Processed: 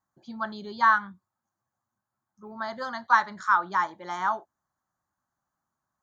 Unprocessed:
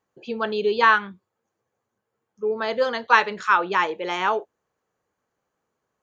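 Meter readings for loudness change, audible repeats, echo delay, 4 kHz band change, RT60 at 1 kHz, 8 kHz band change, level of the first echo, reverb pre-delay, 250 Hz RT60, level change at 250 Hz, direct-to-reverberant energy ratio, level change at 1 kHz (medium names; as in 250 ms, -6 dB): -4.5 dB, no echo, no echo, -12.0 dB, no reverb, no reading, no echo, no reverb, no reverb, -6.5 dB, no reverb, -3.0 dB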